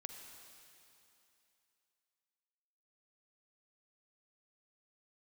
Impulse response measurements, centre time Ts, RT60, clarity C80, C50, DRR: 69 ms, 2.9 s, 5.5 dB, 4.5 dB, 4.5 dB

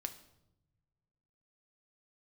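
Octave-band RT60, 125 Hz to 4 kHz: 2.1, 1.7, 1.0, 0.80, 0.65, 0.65 seconds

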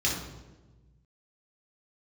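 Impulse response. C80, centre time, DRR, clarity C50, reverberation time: 6.5 dB, 46 ms, −4.0 dB, 3.0 dB, 1.2 s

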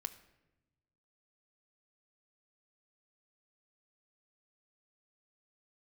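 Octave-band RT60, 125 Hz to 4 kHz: 1.7, 1.4, 1.1, 0.85, 0.85, 0.65 seconds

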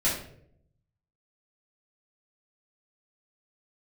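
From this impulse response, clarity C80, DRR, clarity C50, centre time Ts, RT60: 8.5 dB, −8.5 dB, 4.5 dB, 40 ms, 0.65 s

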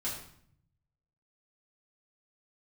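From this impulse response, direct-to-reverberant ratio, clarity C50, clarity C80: −8.0 dB, 4.5 dB, 7.5 dB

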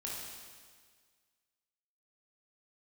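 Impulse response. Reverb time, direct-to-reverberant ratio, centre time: 1.7 s, −5.0 dB, 102 ms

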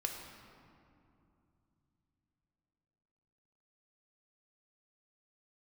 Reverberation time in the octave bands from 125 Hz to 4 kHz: 4.5, 4.0, 2.8, 2.6, 1.9, 1.4 seconds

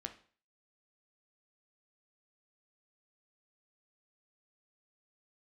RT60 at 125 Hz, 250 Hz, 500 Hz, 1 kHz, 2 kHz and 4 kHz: 0.45, 0.40, 0.45, 0.45, 0.45, 0.40 seconds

